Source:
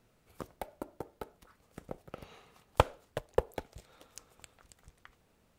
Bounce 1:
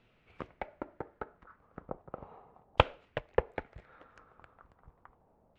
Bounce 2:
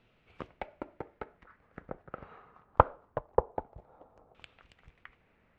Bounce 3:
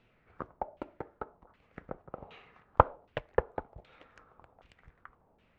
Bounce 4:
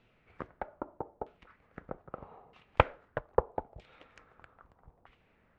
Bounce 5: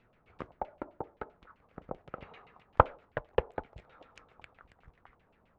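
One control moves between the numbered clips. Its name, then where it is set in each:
auto-filter low-pass, speed: 0.36, 0.23, 1.3, 0.79, 7.7 Hertz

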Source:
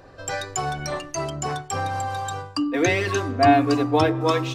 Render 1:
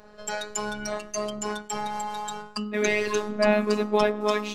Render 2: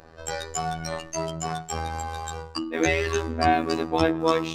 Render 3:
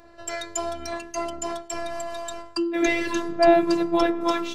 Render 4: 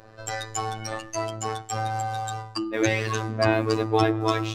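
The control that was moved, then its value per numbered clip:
phases set to zero, frequency: 210, 81, 340, 110 Hertz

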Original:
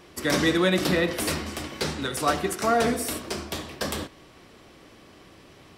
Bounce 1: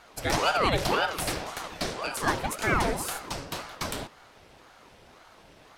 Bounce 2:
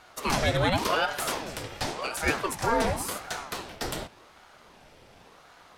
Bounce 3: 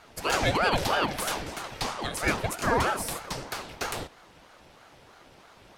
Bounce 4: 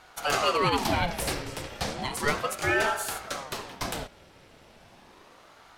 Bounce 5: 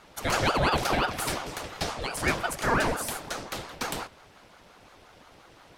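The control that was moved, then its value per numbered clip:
ring modulator whose carrier an LFO sweeps, at: 1.9, 0.9, 3.1, 0.34, 5.7 Hertz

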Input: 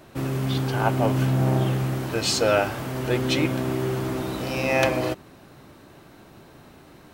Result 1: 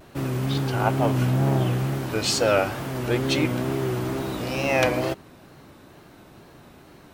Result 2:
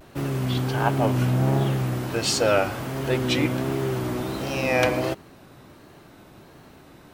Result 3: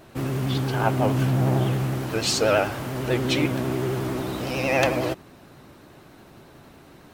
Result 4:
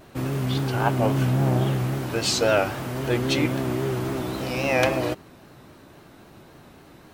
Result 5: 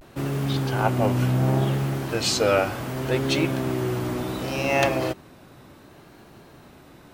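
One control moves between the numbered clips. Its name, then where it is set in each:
pitch vibrato, speed: 2.2, 1.4, 11, 3.7, 0.68 Hertz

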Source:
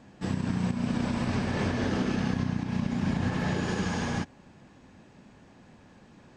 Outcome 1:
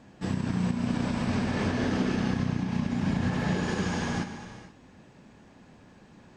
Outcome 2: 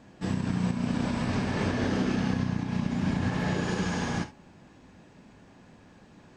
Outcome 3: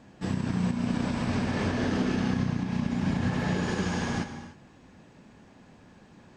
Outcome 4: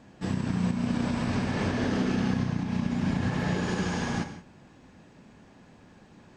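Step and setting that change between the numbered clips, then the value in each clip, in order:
reverb whose tail is shaped and stops, gate: 500, 90, 330, 200 milliseconds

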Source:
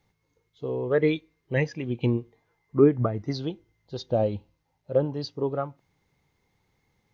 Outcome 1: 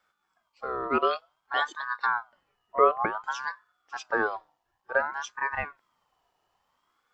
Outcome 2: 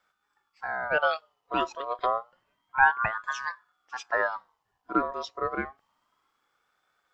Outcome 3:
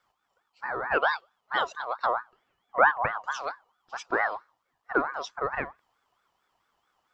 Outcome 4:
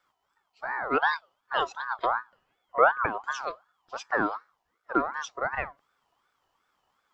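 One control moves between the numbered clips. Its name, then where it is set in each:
ring modulator whose carrier an LFO sweeps, at: 0.55, 0.29, 4.5, 2.7 Hertz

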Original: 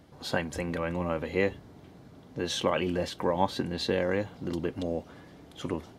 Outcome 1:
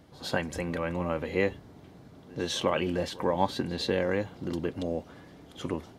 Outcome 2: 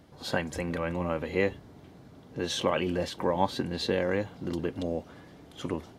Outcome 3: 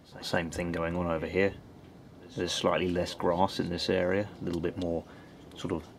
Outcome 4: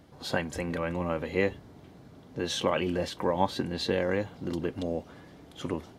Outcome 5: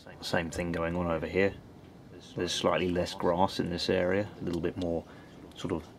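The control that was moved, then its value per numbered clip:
echo ahead of the sound, delay time: 100, 59, 182, 31, 271 milliseconds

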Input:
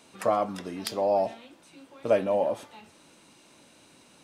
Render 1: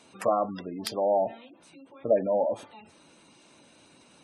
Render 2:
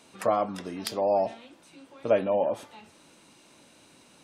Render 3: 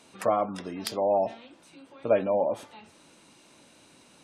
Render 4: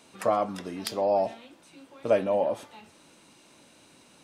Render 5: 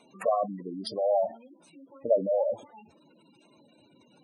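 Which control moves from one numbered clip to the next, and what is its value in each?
gate on every frequency bin, under each frame's peak: −20, −45, −35, −60, −10 decibels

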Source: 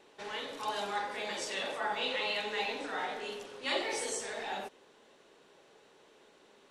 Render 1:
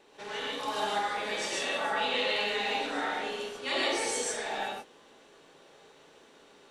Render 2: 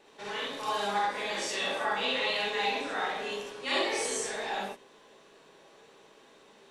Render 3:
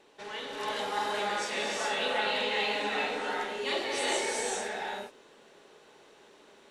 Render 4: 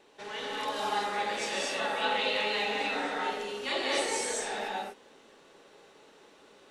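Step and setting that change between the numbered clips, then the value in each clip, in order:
reverb whose tail is shaped and stops, gate: 170, 90, 440, 270 milliseconds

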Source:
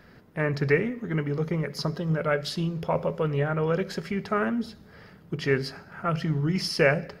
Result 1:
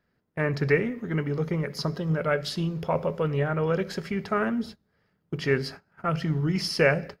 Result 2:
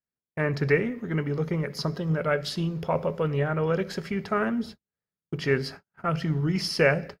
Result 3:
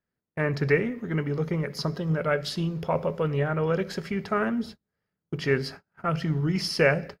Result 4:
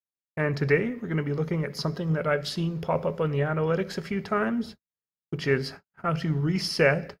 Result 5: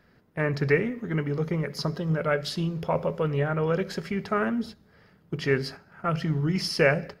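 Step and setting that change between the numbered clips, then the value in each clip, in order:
noise gate, range: −21, −46, −34, −58, −8 decibels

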